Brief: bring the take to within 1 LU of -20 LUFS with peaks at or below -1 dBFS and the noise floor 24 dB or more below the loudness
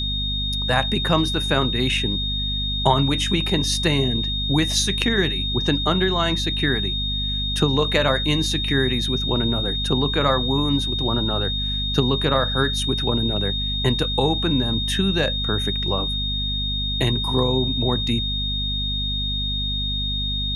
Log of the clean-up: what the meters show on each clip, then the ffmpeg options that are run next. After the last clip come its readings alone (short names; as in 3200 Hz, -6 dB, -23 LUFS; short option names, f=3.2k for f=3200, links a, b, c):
hum 50 Hz; harmonics up to 250 Hz; hum level -25 dBFS; steady tone 3700 Hz; tone level -24 dBFS; loudness -21.0 LUFS; peak -3.0 dBFS; loudness target -20.0 LUFS
-> -af "bandreject=f=50:t=h:w=6,bandreject=f=100:t=h:w=6,bandreject=f=150:t=h:w=6,bandreject=f=200:t=h:w=6,bandreject=f=250:t=h:w=6"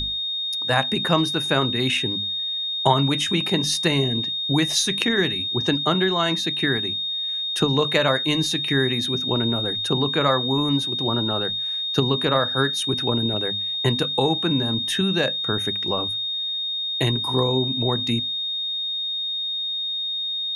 hum none; steady tone 3700 Hz; tone level -24 dBFS
-> -af "bandreject=f=3.7k:w=30"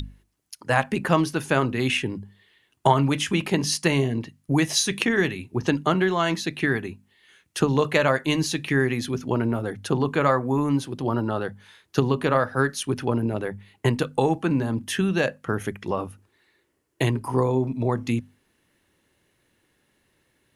steady tone none; loudness -24.0 LUFS; peak -3.5 dBFS; loudness target -20.0 LUFS
-> -af "volume=4dB,alimiter=limit=-1dB:level=0:latency=1"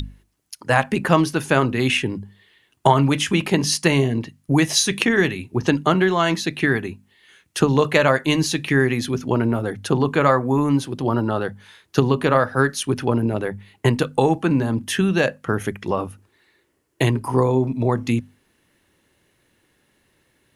loudness -20.0 LUFS; peak -1.0 dBFS; noise floor -66 dBFS